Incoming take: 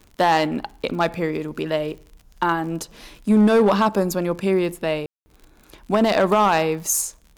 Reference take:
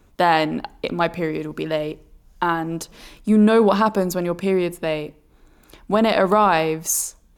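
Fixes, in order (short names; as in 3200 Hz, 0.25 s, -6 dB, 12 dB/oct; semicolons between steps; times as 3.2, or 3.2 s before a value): clip repair -10.5 dBFS; de-click; room tone fill 5.06–5.26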